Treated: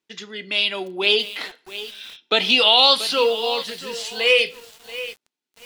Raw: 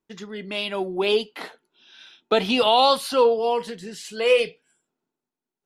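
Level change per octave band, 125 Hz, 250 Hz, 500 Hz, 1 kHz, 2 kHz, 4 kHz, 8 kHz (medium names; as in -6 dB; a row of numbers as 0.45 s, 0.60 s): no reading, -4.0 dB, -2.0 dB, -2.0 dB, +8.0 dB, +9.5 dB, +4.5 dB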